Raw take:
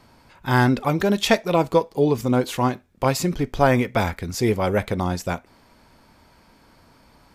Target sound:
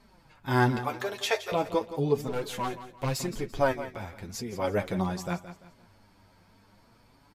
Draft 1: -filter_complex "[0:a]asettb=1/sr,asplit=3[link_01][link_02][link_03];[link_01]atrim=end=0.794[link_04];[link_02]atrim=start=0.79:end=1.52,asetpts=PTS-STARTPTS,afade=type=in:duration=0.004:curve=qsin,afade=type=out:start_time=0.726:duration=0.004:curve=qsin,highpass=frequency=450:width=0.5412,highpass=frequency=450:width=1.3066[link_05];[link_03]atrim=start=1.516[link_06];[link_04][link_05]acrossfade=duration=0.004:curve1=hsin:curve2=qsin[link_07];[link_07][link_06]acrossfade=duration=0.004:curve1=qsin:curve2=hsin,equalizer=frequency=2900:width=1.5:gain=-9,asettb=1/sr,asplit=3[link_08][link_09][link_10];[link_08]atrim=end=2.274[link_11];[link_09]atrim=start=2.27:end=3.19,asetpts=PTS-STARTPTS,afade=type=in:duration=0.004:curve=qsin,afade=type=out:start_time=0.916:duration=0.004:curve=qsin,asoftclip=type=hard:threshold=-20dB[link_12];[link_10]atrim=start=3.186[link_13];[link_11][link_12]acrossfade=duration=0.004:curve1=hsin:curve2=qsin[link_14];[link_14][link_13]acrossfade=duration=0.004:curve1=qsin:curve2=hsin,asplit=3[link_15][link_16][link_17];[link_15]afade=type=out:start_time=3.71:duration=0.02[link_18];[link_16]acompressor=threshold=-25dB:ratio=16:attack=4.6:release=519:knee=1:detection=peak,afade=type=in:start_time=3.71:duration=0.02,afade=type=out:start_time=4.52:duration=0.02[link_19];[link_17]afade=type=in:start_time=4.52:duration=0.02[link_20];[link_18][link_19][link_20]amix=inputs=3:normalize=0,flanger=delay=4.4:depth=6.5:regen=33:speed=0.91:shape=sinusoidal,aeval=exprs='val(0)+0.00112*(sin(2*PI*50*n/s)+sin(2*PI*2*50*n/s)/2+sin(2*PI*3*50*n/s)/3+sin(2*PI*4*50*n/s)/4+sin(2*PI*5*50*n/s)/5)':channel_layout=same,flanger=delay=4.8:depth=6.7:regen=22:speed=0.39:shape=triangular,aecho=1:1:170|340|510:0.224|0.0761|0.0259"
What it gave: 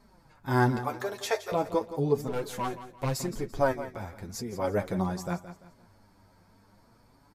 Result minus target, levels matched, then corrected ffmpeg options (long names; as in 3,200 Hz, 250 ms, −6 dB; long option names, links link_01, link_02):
4,000 Hz band −4.5 dB
-filter_complex "[0:a]asettb=1/sr,asplit=3[link_01][link_02][link_03];[link_01]atrim=end=0.794[link_04];[link_02]atrim=start=0.79:end=1.52,asetpts=PTS-STARTPTS,afade=type=in:duration=0.004:curve=qsin,afade=type=out:start_time=0.726:duration=0.004:curve=qsin,highpass=frequency=450:width=0.5412,highpass=frequency=450:width=1.3066[link_05];[link_03]atrim=start=1.516[link_06];[link_04][link_05]acrossfade=duration=0.004:curve1=hsin:curve2=qsin[link_07];[link_07][link_06]acrossfade=duration=0.004:curve1=qsin:curve2=hsin,asettb=1/sr,asplit=3[link_08][link_09][link_10];[link_08]atrim=end=2.274[link_11];[link_09]atrim=start=2.27:end=3.19,asetpts=PTS-STARTPTS,afade=type=in:duration=0.004:curve=qsin,afade=type=out:start_time=0.916:duration=0.004:curve=qsin,asoftclip=type=hard:threshold=-20dB[link_12];[link_10]atrim=start=3.186[link_13];[link_11][link_12]acrossfade=duration=0.004:curve1=hsin:curve2=qsin[link_14];[link_14][link_13]acrossfade=duration=0.004:curve1=qsin:curve2=hsin,asplit=3[link_15][link_16][link_17];[link_15]afade=type=out:start_time=3.71:duration=0.02[link_18];[link_16]acompressor=threshold=-25dB:ratio=16:attack=4.6:release=519:knee=1:detection=peak,afade=type=in:start_time=3.71:duration=0.02,afade=type=out:start_time=4.52:duration=0.02[link_19];[link_17]afade=type=in:start_time=4.52:duration=0.02[link_20];[link_18][link_19][link_20]amix=inputs=3:normalize=0,flanger=delay=4.4:depth=6.5:regen=33:speed=0.91:shape=sinusoidal,aeval=exprs='val(0)+0.00112*(sin(2*PI*50*n/s)+sin(2*PI*2*50*n/s)/2+sin(2*PI*3*50*n/s)/3+sin(2*PI*4*50*n/s)/4+sin(2*PI*5*50*n/s)/5)':channel_layout=same,flanger=delay=4.8:depth=6.7:regen=22:speed=0.39:shape=triangular,aecho=1:1:170|340|510:0.224|0.0761|0.0259"